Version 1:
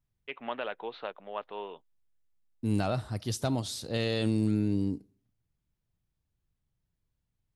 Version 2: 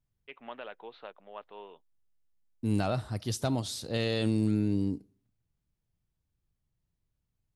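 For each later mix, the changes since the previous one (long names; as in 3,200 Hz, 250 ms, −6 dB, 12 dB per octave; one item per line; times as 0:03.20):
first voice −7.5 dB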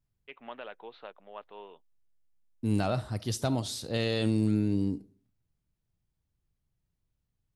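second voice: send +6.5 dB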